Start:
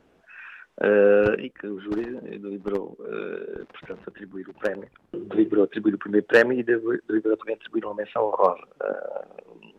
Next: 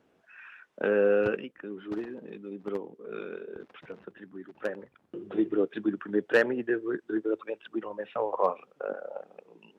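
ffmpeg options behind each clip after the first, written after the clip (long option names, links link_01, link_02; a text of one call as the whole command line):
ffmpeg -i in.wav -af "highpass=95,volume=-6.5dB" out.wav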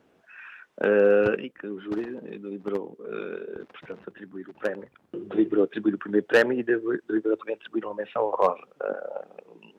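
ffmpeg -i in.wav -af "asoftclip=type=hard:threshold=-15dB,volume=4.5dB" out.wav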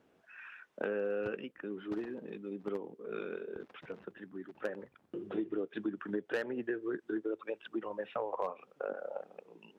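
ffmpeg -i in.wav -af "acompressor=threshold=-26dB:ratio=6,volume=-6dB" out.wav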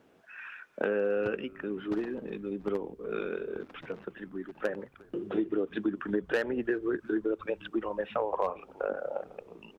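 ffmpeg -i in.wav -filter_complex "[0:a]asplit=5[link_01][link_02][link_03][link_04][link_05];[link_02]adelay=356,afreqshift=-130,volume=-24dB[link_06];[link_03]adelay=712,afreqshift=-260,volume=-29.2dB[link_07];[link_04]adelay=1068,afreqshift=-390,volume=-34.4dB[link_08];[link_05]adelay=1424,afreqshift=-520,volume=-39.6dB[link_09];[link_01][link_06][link_07][link_08][link_09]amix=inputs=5:normalize=0,volume=6dB" out.wav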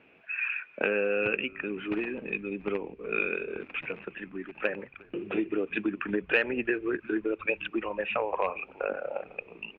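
ffmpeg -i in.wav -af "lowpass=frequency=2500:width_type=q:width=11" out.wav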